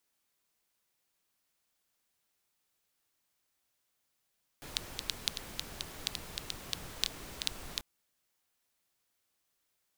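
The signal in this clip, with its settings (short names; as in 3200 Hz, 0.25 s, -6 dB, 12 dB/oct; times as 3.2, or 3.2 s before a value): rain from filtered ticks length 3.19 s, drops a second 5.3, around 3800 Hz, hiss -4 dB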